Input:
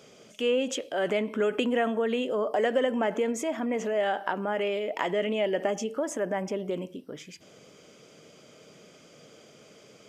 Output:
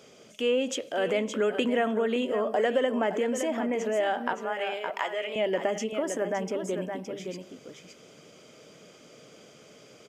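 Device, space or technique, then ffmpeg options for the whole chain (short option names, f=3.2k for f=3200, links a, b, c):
ducked delay: -filter_complex "[0:a]bandreject=f=50:t=h:w=6,bandreject=f=100:t=h:w=6,bandreject=f=150:t=h:w=6,bandreject=f=200:t=h:w=6,asettb=1/sr,asplit=3[a][b][c];[a]atrim=end=4.334[d];[b]atrim=start=4.33:end=5.36,asetpts=PTS-STARTPTS,afade=t=in:d=0.004:c=qsin,afade=t=out:st=1.026:d=0.004:c=qsin,highpass=650[e];[c]atrim=start=5.356[f];[d][e]acrossfade=d=0.004:c1=hsin:c2=qsin[g];[g][f]acrossfade=d=0.004:c1=qsin:c2=hsin,asplit=3[h][i][j];[i]adelay=567,volume=-5.5dB[k];[j]apad=whole_len=469758[l];[k][l]sidechaincompress=threshold=-29dB:ratio=8:attack=12:release=205[m];[h][m]amix=inputs=2:normalize=0"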